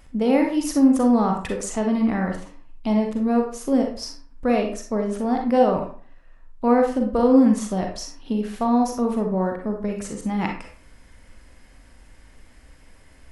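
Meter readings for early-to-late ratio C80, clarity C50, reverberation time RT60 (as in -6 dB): 10.0 dB, 4.5 dB, 0.45 s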